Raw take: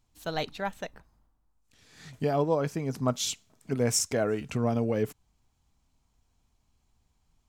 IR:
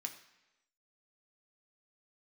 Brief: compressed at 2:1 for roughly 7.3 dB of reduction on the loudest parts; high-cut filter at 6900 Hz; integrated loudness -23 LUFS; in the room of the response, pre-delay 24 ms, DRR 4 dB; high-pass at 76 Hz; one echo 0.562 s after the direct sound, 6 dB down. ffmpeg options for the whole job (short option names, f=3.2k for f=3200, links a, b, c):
-filter_complex "[0:a]highpass=76,lowpass=6.9k,acompressor=threshold=-35dB:ratio=2,aecho=1:1:562:0.501,asplit=2[a][b];[1:a]atrim=start_sample=2205,adelay=24[c];[b][c]afir=irnorm=-1:irlink=0,volume=-2dB[d];[a][d]amix=inputs=2:normalize=0,volume=12dB"